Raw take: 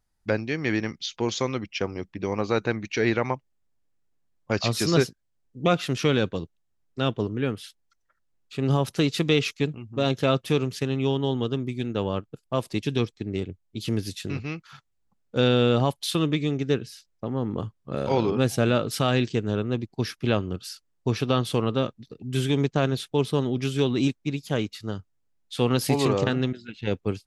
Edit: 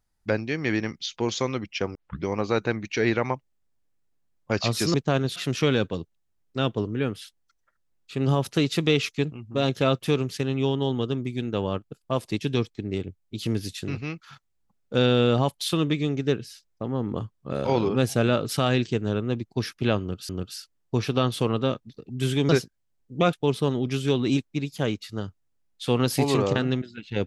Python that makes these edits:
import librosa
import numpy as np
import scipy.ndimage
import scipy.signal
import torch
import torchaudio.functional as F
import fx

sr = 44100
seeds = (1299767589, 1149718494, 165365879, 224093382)

y = fx.edit(x, sr, fx.tape_start(start_s=1.95, length_s=0.3),
    fx.swap(start_s=4.94, length_s=0.84, other_s=22.62, other_length_s=0.42),
    fx.repeat(start_s=20.42, length_s=0.29, count=2), tone=tone)